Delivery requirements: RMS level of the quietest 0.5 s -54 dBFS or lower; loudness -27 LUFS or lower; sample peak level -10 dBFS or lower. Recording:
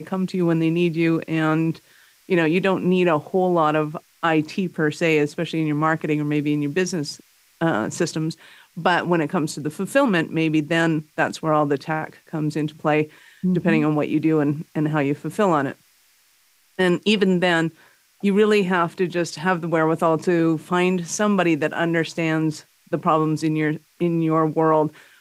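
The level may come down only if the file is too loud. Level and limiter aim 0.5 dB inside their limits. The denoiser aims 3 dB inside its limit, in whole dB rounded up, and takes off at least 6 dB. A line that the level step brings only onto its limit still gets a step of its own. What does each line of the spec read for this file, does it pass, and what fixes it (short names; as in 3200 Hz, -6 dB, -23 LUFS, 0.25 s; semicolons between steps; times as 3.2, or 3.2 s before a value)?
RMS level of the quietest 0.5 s -60 dBFS: OK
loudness -21.5 LUFS: fail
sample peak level -4.5 dBFS: fail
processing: gain -6 dB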